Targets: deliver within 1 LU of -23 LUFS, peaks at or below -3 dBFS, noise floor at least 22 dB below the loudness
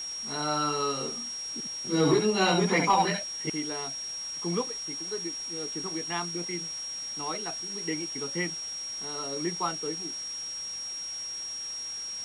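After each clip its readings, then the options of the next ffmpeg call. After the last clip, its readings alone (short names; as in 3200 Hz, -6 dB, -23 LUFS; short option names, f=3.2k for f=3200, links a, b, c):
steady tone 5600 Hz; tone level -34 dBFS; noise floor -37 dBFS; noise floor target -52 dBFS; loudness -30.0 LUFS; peak -14.0 dBFS; loudness target -23.0 LUFS
-> -af "bandreject=f=5.6k:w=30"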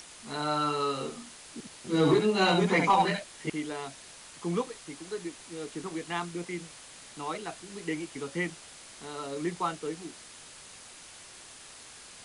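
steady tone none; noise floor -50 dBFS; noise floor target -53 dBFS
-> -af "afftdn=nr=6:nf=-50"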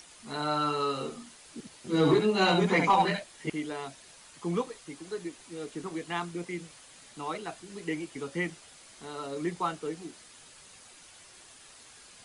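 noise floor -54 dBFS; loudness -30.5 LUFS; peak -14.5 dBFS; loudness target -23.0 LUFS
-> -af "volume=7.5dB"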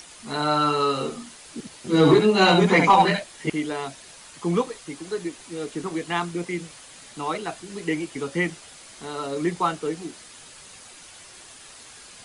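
loudness -23.0 LUFS; peak -7.0 dBFS; noise floor -46 dBFS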